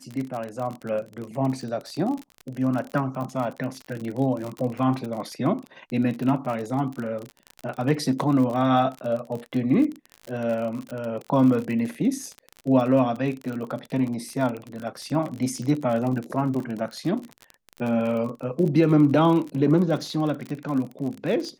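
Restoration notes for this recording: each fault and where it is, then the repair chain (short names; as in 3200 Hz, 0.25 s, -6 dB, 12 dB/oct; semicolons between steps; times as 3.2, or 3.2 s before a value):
crackle 38/s -29 dBFS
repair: de-click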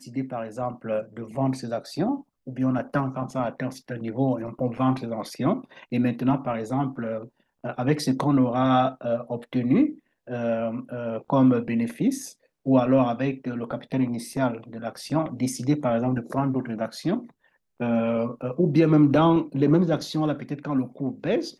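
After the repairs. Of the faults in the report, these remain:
none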